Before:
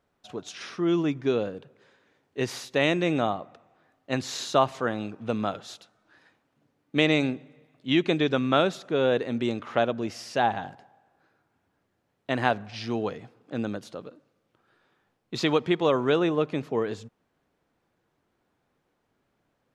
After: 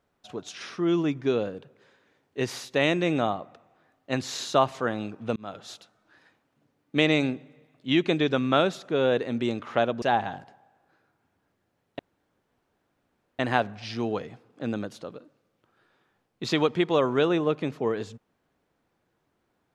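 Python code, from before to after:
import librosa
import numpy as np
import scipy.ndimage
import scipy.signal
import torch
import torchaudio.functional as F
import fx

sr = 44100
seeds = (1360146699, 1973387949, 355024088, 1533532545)

y = fx.edit(x, sr, fx.fade_in_span(start_s=5.36, length_s=0.33),
    fx.cut(start_s=10.02, length_s=0.31),
    fx.insert_room_tone(at_s=12.3, length_s=1.4), tone=tone)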